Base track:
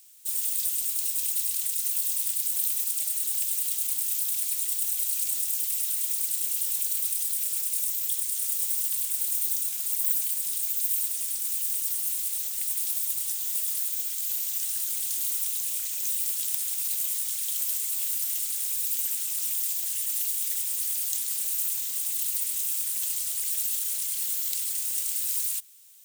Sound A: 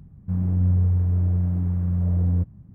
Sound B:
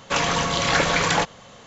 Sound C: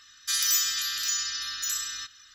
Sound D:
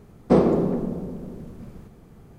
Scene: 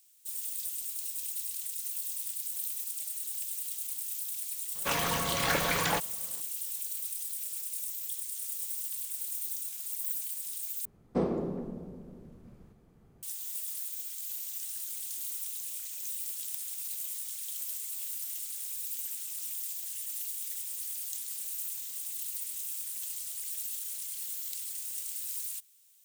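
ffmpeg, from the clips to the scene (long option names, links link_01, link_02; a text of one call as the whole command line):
ffmpeg -i bed.wav -i cue0.wav -i cue1.wav -i cue2.wav -i cue3.wav -filter_complex "[0:a]volume=-9dB,asplit=2[link_01][link_02];[link_01]atrim=end=10.854[link_03];[4:a]atrim=end=2.38,asetpts=PTS-STARTPTS,volume=-12.5dB[link_04];[link_02]atrim=start=13.226[link_05];[2:a]atrim=end=1.66,asetpts=PTS-STARTPTS,volume=-9dB,afade=type=in:duration=0.004:curve=hsin,afade=type=out:start_time=1.656:duration=0.004:curve=hsin,adelay=4750[link_06];[link_03][link_04]acrossfade=duration=0.004:curve1=hsin:curve2=hsin[link_07];[link_07][link_05]acrossfade=duration=0.004:curve1=hsin:curve2=hsin[link_08];[link_08][link_06]amix=inputs=2:normalize=0" out.wav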